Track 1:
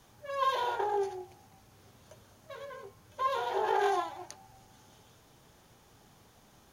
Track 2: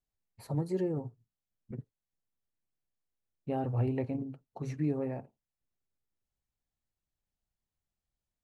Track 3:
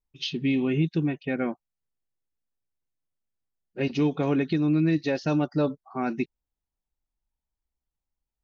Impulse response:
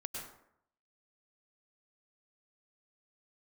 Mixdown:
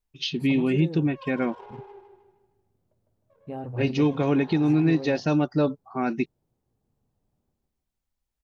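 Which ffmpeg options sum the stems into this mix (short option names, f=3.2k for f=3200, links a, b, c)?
-filter_complex "[0:a]adynamicsmooth=sensitivity=2:basefreq=500,adelay=800,volume=-14dB,asplit=2[a][b];[b]volume=-3dB[c];[1:a]volume=-2dB[d];[2:a]volume=2dB[e];[c]aecho=0:1:154|308|462|616|770|924:1|0.45|0.202|0.0911|0.041|0.0185[f];[a][d][e][f]amix=inputs=4:normalize=0"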